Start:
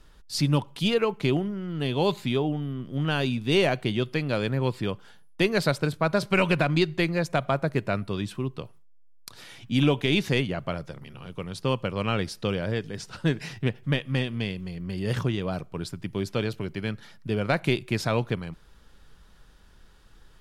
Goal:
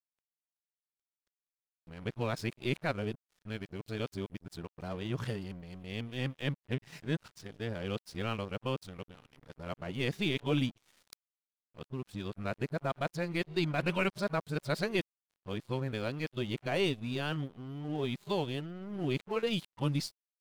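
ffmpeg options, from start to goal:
ffmpeg -i in.wav -af "areverse,aeval=exprs='sgn(val(0))*max(abs(val(0))-0.00794,0)':channel_layout=same,volume=-8dB" out.wav

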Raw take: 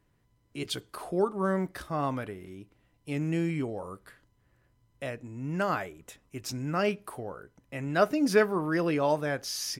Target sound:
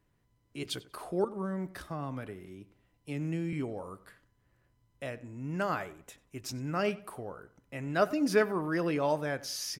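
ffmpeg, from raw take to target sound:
ffmpeg -i in.wav -filter_complex "[0:a]asettb=1/sr,asplit=3[link_01][link_02][link_03];[link_01]atrim=end=1.244[link_04];[link_02]atrim=start=1.24:end=3.53,asetpts=PTS-STARTPTS,afade=type=in:duration=0.004:curve=qsin,afade=type=out:start_time=2.286:duration=0.004:curve=qsin,acrossover=split=240[link_05][link_06];[link_06]acompressor=threshold=-34dB:ratio=5[link_07];[link_05][link_07]amix=inputs=2:normalize=0[link_08];[link_03]atrim=start=3.526[link_09];[link_04][link_08]acrossfade=duration=0.004:curve1=hsin:curve2=qsin[link_10];[link_10][link_09]acrossfade=duration=0.004:curve1=qsin:curve2=hsin,asplit=2[link_11][link_12];[link_12]adelay=93,lowpass=frequency=3400:poles=1,volume=-18.5dB,asplit=2[link_13][link_14];[link_14]adelay=93,lowpass=frequency=3400:poles=1,volume=0.35,asplit=2[link_15][link_16];[link_16]adelay=93,lowpass=frequency=3400:poles=1,volume=0.35[link_17];[link_11][link_13][link_15][link_17]amix=inputs=4:normalize=0,volume=-3dB" out.wav

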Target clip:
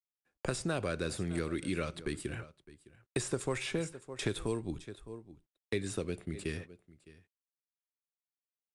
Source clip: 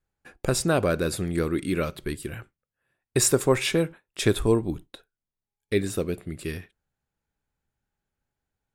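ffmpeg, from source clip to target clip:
ffmpeg -i in.wav -filter_complex "[0:a]agate=range=-26dB:threshold=-40dB:ratio=16:detection=peak,aecho=1:1:610:0.0841,acrossover=split=640|2700[link_01][link_02][link_03];[link_03]asoftclip=type=tanh:threshold=-25dB[link_04];[link_01][link_02][link_04]amix=inputs=3:normalize=0,acrossover=split=99|1800[link_05][link_06][link_07];[link_05]acompressor=threshold=-42dB:ratio=4[link_08];[link_06]acompressor=threshold=-29dB:ratio=4[link_09];[link_07]acompressor=threshold=-36dB:ratio=4[link_10];[link_08][link_09][link_10]amix=inputs=3:normalize=0,volume=-3.5dB" -ar 22050 -c:a adpcm_ima_wav out.wav

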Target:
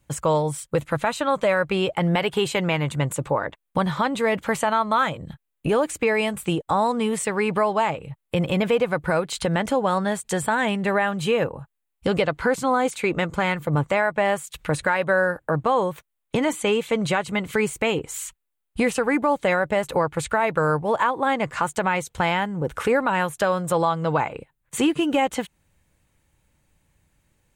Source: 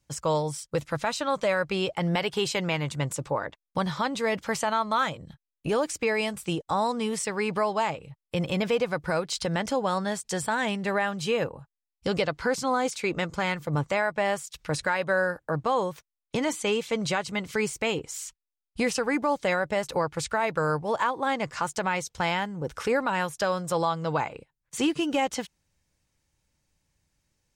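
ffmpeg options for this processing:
ffmpeg -i in.wav -filter_complex "[0:a]equalizer=frequency=5300:width_type=o:width=0.67:gain=-13.5,asplit=2[link_01][link_02];[link_02]acompressor=threshold=-36dB:ratio=6,volume=1dB[link_03];[link_01][link_03]amix=inputs=2:normalize=0,volume=3dB" out.wav

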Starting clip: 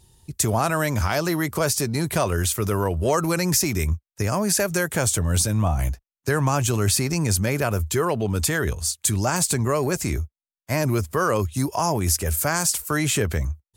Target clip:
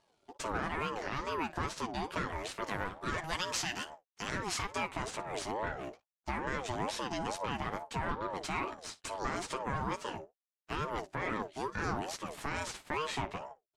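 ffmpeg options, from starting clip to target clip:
ffmpeg -i in.wav -filter_complex "[0:a]aeval=exprs='if(lt(val(0),0),0.251*val(0),val(0))':channel_layout=same,highpass=160,lowpass=4000,aecho=1:1:10|57:0.531|0.141,alimiter=limit=-16dB:level=0:latency=1:release=128,asettb=1/sr,asplit=3[link_01][link_02][link_03];[link_01]atrim=end=2.644[link_04];[link_02]atrim=start=2.64:end=4.76,asetpts=PTS-STARTPTS,afade=type=in:duration=0.004:curve=qsin,afade=type=out:start_time=2.116:duration=0.004:curve=qsin,tiltshelf=frequency=830:gain=-6.5[link_05];[link_03]atrim=start=4.756[link_06];[link_04][link_05]acrossfade=duration=0.004:curve1=hsin:curve2=qsin[link_07];[link_07][link_06]acrossfade=duration=0.004:curve1=qsin:curve2=hsin,aeval=exprs='val(0)*sin(2*PI*630*n/s+630*0.25/2.3*sin(2*PI*2.3*n/s))':channel_layout=same,volume=-5.5dB" out.wav

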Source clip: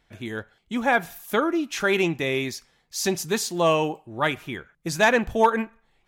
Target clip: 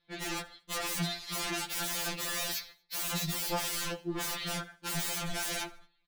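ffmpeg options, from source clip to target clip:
ffmpeg -i in.wav -filter_complex "[0:a]agate=range=-17dB:threshold=-51dB:ratio=16:detection=peak,lowpass=frequency=4100:width_type=q:width=7.4,equalizer=frequency=60:width=1.9:gain=-5.5,aeval=exprs='0.02*(abs(mod(val(0)/0.02+3,4)-2)-1)':channel_layout=same,asplit=2[link_01][link_02];[link_02]asetrate=22050,aresample=44100,atempo=2,volume=-10dB[link_03];[link_01][link_03]amix=inputs=2:normalize=0,aecho=1:1:76|152|228:0.0708|0.029|0.0119,afftfilt=real='re*2.83*eq(mod(b,8),0)':imag='im*2.83*eq(mod(b,8),0)':win_size=2048:overlap=0.75,volume=6dB" out.wav

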